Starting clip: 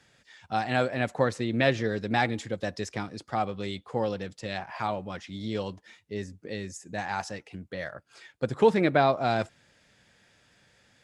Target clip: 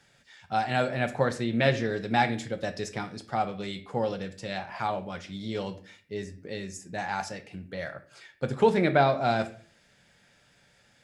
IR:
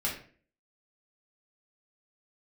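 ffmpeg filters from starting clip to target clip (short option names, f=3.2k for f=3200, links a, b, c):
-filter_complex "[0:a]asplit=2[a][b];[1:a]atrim=start_sample=2205,highshelf=f=9.2k:g=11[c];[b][c]afir=irnorm=-1:irlink=0,volume=-11.5dB[d];[a][d]amix=inputs=2:normalize=0,volume=-2dB"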